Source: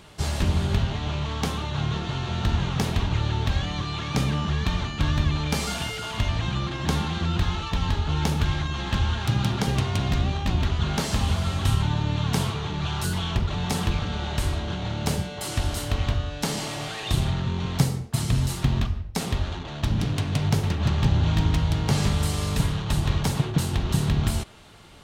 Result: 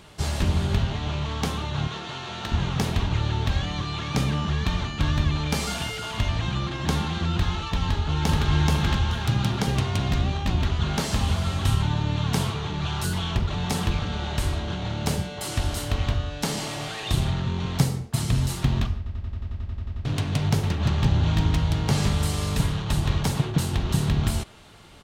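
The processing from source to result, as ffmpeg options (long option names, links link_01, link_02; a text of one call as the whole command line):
ffmpeg -i in.wav -filter_complex "[0:a]asettb=1/sr,asplit=3[link_01][link_02][link_03];[link_01]atrim=end=1.874[link_04];[link_02]atrim=start=1.87:end=2.52,asetpts=PTS-STARTPTS,afade=type=in:duration=0.004:curve=qsin,afade=type=out:start_time=0.646:duration=0.004:curve=qsin,highpass=frequency=470:poles=1[link_05];[link_03]atrim=start=2.516[link_06];[link_04][link_05]acrossfade=duration=0.004:curve1=hsin:curve2=qsin[link_07];[link_07][link_06]acrossfade=duration=0.004:curve1=qsin:curve2=hsin,asplit=2[link_08][link_09];[link_09]afade=type=in:start_time=7.85:duration=0.01,afade=type=out:start_time=8.5:duration=0.01,aecho=0:1:430|860|1290:1|0.2|0.04[link_10];[link_08][link_10]amix=inputs=2:normalize=0,asplit=13[link_11][link_12][link_13][link_14][link_15][link_16][link_17][link_18][link_19][link_20][link_21][link_22][link_23];[link_11]atrim=end=19.062[link_24];[link_12]atrim=start=18.968:end=19.062[link_25];[link_13]atrim=start=18.968:end=19.062[link_26];[link_14]atrim=start=18.968:end=19.062[link_27];[link_15]atrim=start=18.968:end=19.062[link_28];[link_16]atrim=start=18.968:end=19.062[link_29];[link_17]atrim=start=18.968:end=19.062[link_30];[link_18]atrim=start=18.968:end=19.062[link_31];[link_19]atrim=start=18.968:end=19.062[link_32];[link_20]atrim=start=18.968:end=19.062[link_33];[link_21]atrim=start=18.968:end=19.062[link_34];[link_22]atrim=start=18.968:end=19.062[link_35];[link_23]atrim=start=20.048[link_36];[link_24][link_25]acrossfade=duration=0.004:curve1=hsin:curve2=hsin[link_37];[link_37][link_26]acrossfade=duration=0.004:curve1=hsin:curve2=hsin[link_38];[link_38][link_27]acrossfade=duration=0.004:curve1=hsin:curve2=hsin[link_39];[link_39][link_28]acrossfade=duration=0.004:curve1=hsin:curve2=hsin[link_40];[link_40][link_29]acrossfade=duration=0.004:curve1=hsin:curve2=hsin[link_41];[link_41][link_30]acrossfade=duration=0.004:curve1=hsin:curve2=hsin[link_42];[link_42][link_31]acrossfade=duration=0.004:curve1=hsin:curve2=hsin[link_43];[link_43][link_32]acrossfade=duration=0.004:curve1=hsin:curve2=hsin[link_44];[link_44][link_33]acrossfade=duration=0.004:curve1=hsin:curve2=hsin[link_45];[link_45][link_34]acrossfade=duration=0.004:curve1=hsin:curve2=hsin[link_46];[link_46][link_35]acrossfade=duration=0.004:curve1=hsin:curve2=hsin[link_47];[link_47][link_36]acrossfade=duration=0.004:curve1=hsin:curve2=hsin" out.wav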